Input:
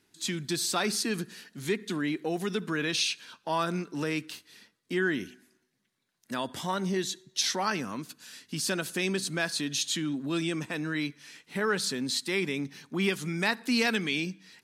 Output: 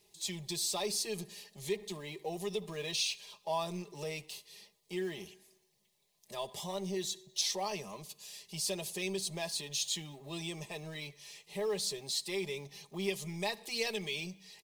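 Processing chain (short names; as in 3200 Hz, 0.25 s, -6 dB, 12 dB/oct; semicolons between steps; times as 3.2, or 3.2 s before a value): G.711 law mismatch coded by mu; fixed phaser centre 610 Hz, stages 4; comb 4.9 ms, depth 61%; gain -5.5 dB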